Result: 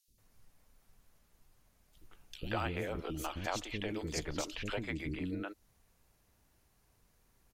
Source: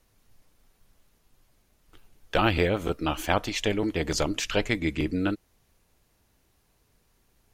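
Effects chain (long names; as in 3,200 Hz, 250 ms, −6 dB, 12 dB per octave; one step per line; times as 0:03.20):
downward compressor 2 to 1, threshold −35 dBFS, peak gain reduction 10 dB
three-band delay without the direct sound highs, lows, mids 80/180 ms, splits 360/3,400 Hz
level −3 dB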